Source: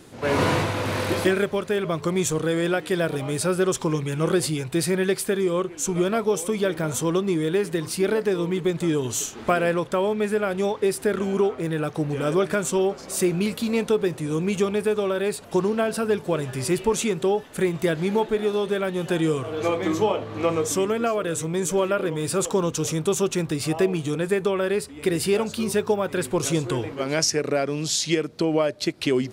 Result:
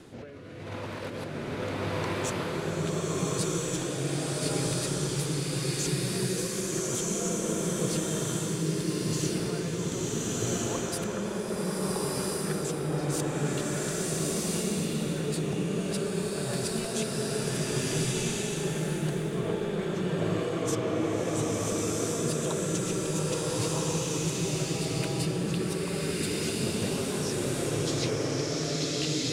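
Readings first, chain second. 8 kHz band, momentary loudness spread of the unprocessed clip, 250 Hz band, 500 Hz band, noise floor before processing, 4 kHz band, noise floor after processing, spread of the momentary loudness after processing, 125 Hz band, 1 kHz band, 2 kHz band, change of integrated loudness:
-1.5 dB, 3 LU, -6.0 dB, -9.0 dB, -40 dBFS, -2.5 dB, -35 dBFS, 3 LU, -1.5 dB, -8.5 dB, -7.5 dB, -6.0 dB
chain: high shelf 7400 Hz -9 dB; negative-ratio compressor -32 dBFS, ratio -1; rotary speaker horn 0.8 Hz, later 6.7 Hz, at 13.23; bloom reverb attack 1.39 s, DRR -8.5 dB; gain -6 dB

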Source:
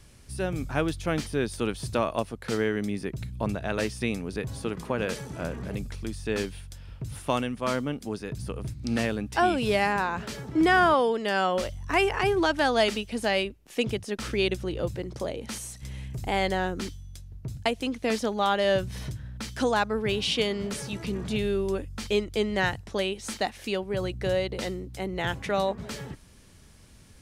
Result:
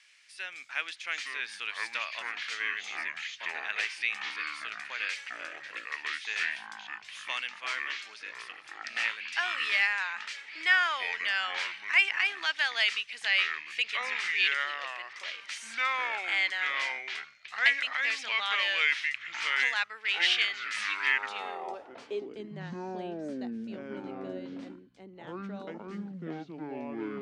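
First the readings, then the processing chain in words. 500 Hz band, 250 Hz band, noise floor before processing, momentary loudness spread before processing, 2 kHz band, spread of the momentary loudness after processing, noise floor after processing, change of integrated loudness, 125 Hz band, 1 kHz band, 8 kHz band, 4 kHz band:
-16.5 dB, -13.5 dB, -52 dBFS, 12 LU, +4.5 dB, 15 LU, -51 dBFS, -2.0 dB, under -15 dB, -8.5 dB, -6.5 dB, +1.5 dB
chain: weighting filter ITU-R 468; echoes that change speed 0.702 s, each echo -6 st, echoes 2; band-pass sweep 2100 Hz -> 230 Hz, 21.05–22.46

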